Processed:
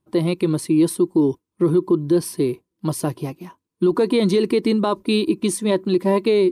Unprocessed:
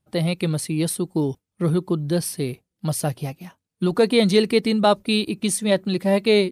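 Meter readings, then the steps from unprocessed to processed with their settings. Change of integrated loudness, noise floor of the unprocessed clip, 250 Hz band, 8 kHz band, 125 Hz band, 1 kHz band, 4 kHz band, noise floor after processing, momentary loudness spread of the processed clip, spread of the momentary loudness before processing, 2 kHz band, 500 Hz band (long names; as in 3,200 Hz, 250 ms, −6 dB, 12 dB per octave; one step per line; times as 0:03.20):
+1.5 dB, −83 dBFS, +3.5 dB, −2.5 dB, −1.0 dB, −1.0 dB, −4.5 dB, −81 dBFS, 8 LU, 10 LU, −4.5 dB, +2.0 dB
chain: hollow resonant body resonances 340/1,000 Hz, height 15 dB, ringing for 30 ms
boost into a limiter +5.5 dB
level −8 dB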